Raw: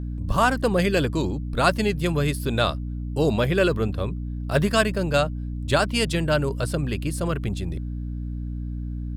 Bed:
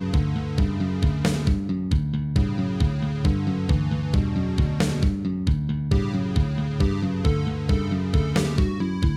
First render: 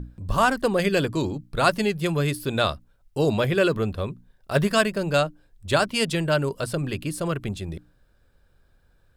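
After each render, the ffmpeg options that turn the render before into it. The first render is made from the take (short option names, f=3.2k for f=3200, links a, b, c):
-af "bandreject=f=60:t=h:w=6,bandreject=f=120:t=h:w=6,bandreject=f=180:t=h:w=6,bandreject=f=240:t=h:w=6,bandreject=f=300:t=h:w=6"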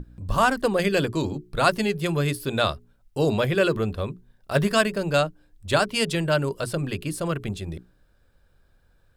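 -af "bandreject=f=60:t=h:w=6,bandreject=f=120:t=h:w=6,bandreject=f=180:t=h:w=6,bandreject=f=240:t=h:w=6,bandreject=f=300:t=h:w=6,bandreject=f=360:t=h:w=6,bandreject=f=420:t=h:w=6"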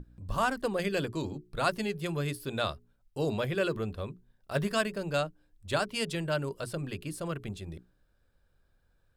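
-af "volume=-8.5dB"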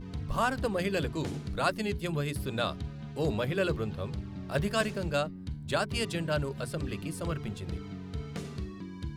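-filter_complex "[1:a]volume=-16.5dB[a];[0:a][a]amix=inputs=2:normalize=0"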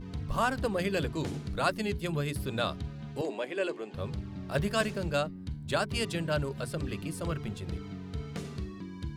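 -filter_complex "[0:a]asettb=1/sr,asplit=3[a][b][c];[a]atrim=end=3.214[d];[b]atrim=start=3.21:end=3.94,asetpts=PTS-STARTPTS,afade=t=in:d=0.004:c=qsin,afade=t=out:st=0.726:d=0.004:c=qsin,highpass=f=300:w=0.5412,highpass=f=300:w=1.3066,equalizer=f=470:t=q:w=4:g=-4,equalizer=f=1.3k:t=q:w=4:g=-9,equalizer=f=3.8k:t=q:w=4:g=-8,equalizer=f=5.5k:t=q:w=4:g=-8,lowpass=f=8.9k:w=0.5412,lowpass=f=8.9k:w=1.3066[e];[c]atrim=start=3.936[f];[d][e]acrossfade=d=0.004:c1=hsin:c2=qsin[g];[g][f]acrossfade=d=0.004:c1=qsin:c2=hsin"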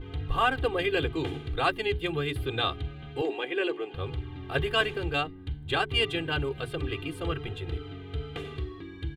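-af "highshelf=f=4.2k:t=q:w=3:g=-9,aecho=1:1:2.5:1"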